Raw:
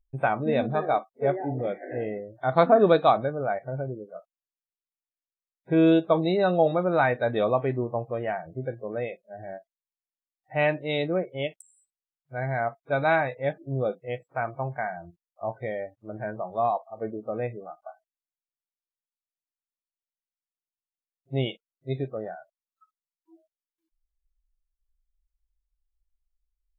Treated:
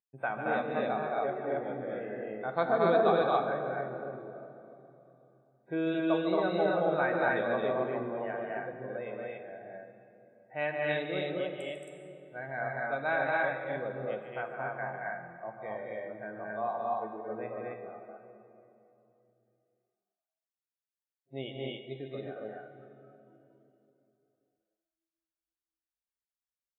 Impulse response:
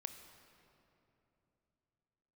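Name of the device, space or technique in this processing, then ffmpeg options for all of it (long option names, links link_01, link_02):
stadium PA: -filter_complex "[0:a]highpass=200,equalizer=frequency=1600:width_type=o:width=0.28:gain=6,aecho=1:1:148.7|224.5|271.1:0.398|0.794|0.891[link_01];[1:a]atrim=start_sample=2205[link_02];[link_01][link_02]afir=irnorm=-1:irlink=0,volume=-6.5dB"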